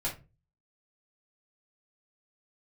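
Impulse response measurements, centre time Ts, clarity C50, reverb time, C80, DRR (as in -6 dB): 20 ms, 10.0 dB, 0.30 s, 18.0 dB, -7.0 dB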